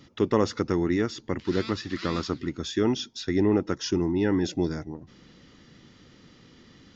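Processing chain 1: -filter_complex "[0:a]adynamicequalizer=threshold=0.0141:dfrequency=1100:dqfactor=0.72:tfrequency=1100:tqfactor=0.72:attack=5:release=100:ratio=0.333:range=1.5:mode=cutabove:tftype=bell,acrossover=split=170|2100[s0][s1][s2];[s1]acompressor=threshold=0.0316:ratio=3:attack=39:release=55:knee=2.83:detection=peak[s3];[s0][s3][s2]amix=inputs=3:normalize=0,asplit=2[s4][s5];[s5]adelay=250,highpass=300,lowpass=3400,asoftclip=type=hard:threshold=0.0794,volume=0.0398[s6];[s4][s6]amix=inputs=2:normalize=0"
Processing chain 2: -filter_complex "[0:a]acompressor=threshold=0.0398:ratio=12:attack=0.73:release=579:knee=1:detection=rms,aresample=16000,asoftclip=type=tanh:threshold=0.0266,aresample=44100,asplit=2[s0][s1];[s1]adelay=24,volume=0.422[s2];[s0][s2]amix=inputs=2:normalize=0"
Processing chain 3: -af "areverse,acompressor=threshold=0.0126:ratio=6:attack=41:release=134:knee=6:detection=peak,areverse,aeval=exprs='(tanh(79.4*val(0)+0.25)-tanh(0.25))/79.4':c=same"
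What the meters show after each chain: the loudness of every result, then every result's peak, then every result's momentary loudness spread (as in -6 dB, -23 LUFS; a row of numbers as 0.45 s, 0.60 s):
-29.0 LUFS, -40.5 LUFS, -43.5 LUFS; -13.0 dBFS, -29.0 dBFS, -36.0 dBFS; 5 LU, 14 LU, 12 LU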